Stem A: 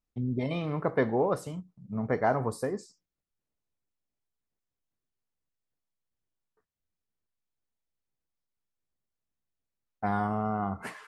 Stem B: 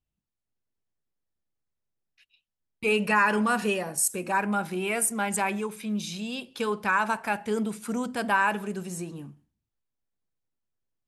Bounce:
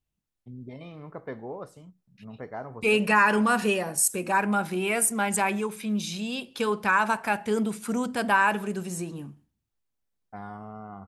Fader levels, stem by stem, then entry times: −11.0, +2.0 decibels; 0.30, 0.00 seconds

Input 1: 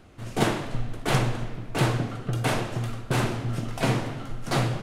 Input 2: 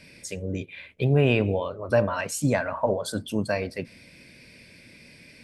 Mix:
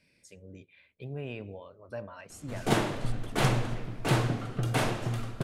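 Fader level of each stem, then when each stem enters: −2.5, −18.0 decibels; 2.30, 0.00 seconds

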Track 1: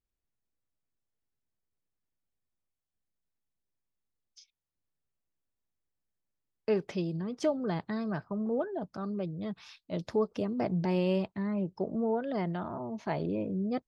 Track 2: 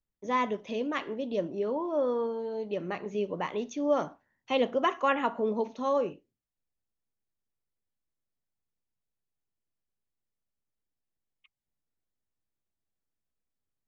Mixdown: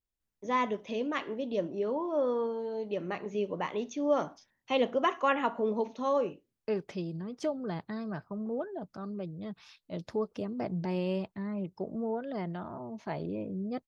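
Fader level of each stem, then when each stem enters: −3.5, −1.0 decibels; 0.00, 0.20 seconds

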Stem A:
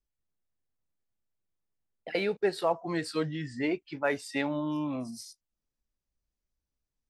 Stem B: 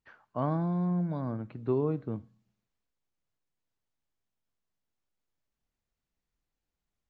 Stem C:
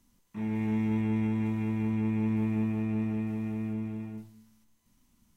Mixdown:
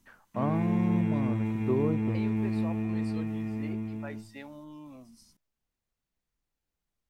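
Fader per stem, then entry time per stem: −14.5, 0.0, −0.5 decibels; 0.00, 0.00, 0.00 seconds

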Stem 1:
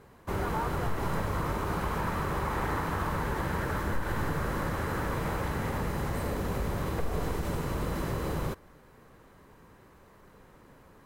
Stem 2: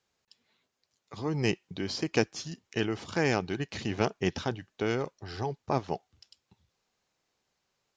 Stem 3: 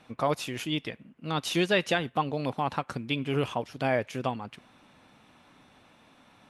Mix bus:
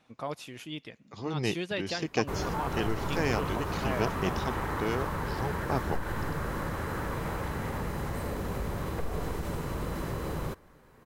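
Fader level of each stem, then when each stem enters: −2.0, −2.5, −9.0 decibels; 2.00, 0.00, 0.00 seconds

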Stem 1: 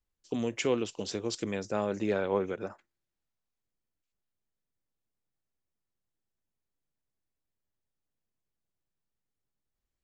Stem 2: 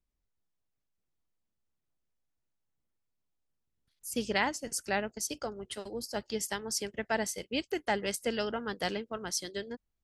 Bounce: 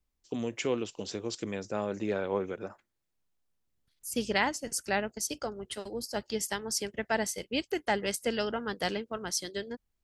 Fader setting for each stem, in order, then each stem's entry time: −2.0, +1.5 decibels; 0.00, 0.00 seconds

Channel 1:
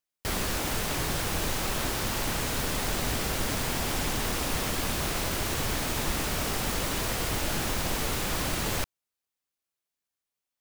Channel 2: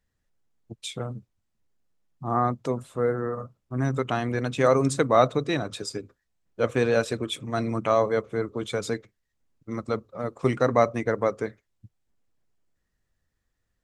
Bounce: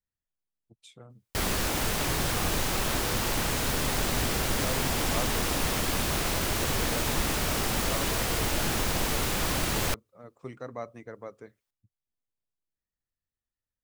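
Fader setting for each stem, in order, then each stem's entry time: +1.5, −17.5 decibels; 1.10, 0.00 seconds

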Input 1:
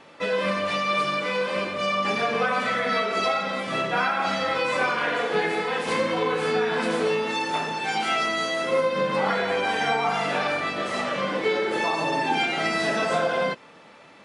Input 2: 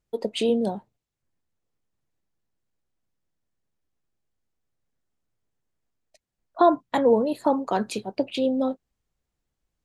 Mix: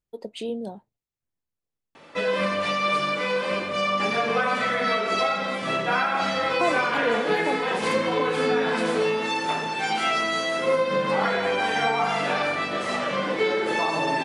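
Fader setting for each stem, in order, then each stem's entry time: +0.5, −8.0 decibels; 1.95, 0.00 seconds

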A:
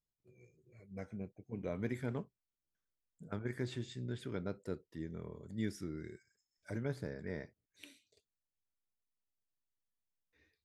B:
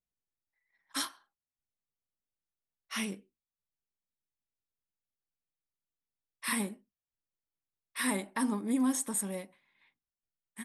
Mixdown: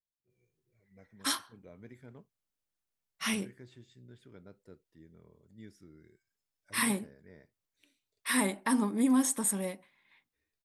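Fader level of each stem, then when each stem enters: −13.0, +3.0 decibels; 0.00, 0.30 seconds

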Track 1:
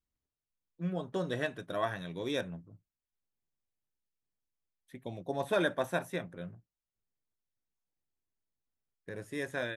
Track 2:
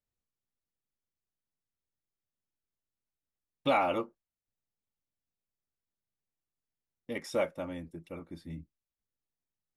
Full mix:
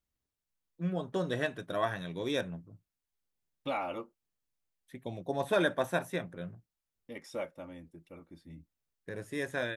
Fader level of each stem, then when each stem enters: +1.5, −7.5 decibels; 0.00, 0.00 seconds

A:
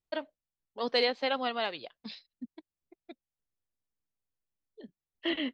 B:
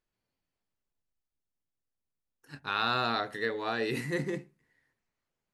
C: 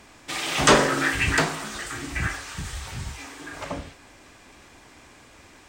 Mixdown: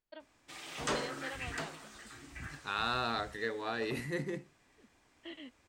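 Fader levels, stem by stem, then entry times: −16.0, −4.5, −18.5 decibels; 0.00, 0.00, 0.20 seconds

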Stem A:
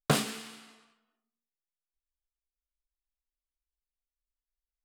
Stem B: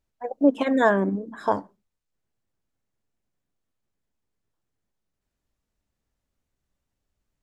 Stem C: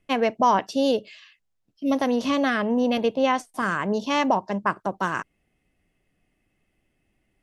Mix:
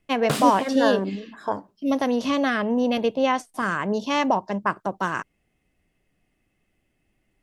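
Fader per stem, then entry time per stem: +0.5, −3.5, 0.0 decibels; 0.20, 0.00, 0.00 seconds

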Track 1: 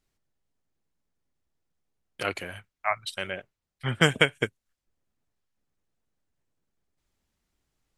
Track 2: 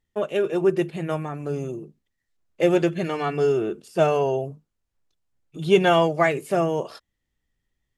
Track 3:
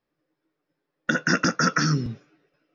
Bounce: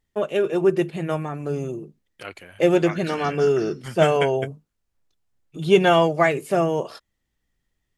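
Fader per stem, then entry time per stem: −7.0, +1.5, −17.0 decibels; 0.00, 0.00, 1.80 seconds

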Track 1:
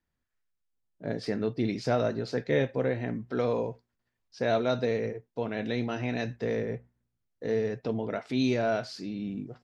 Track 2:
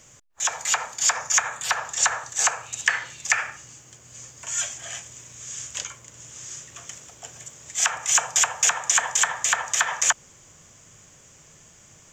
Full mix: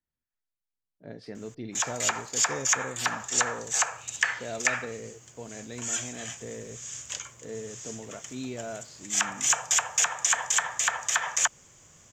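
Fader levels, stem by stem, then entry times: −10.0, −4.0 decibels; 0.00, 1.35 seconds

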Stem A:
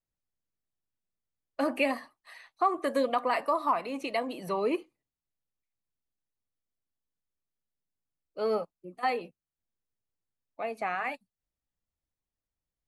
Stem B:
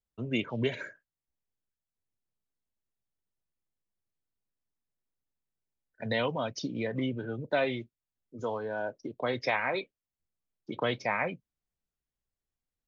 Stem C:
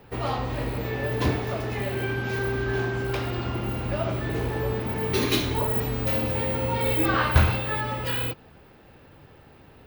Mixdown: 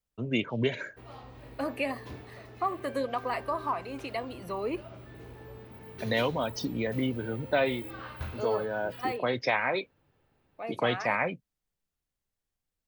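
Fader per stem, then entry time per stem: −4.0, +2.0, −19.5 decibels; 0.00, 0.00, 0.85 seconds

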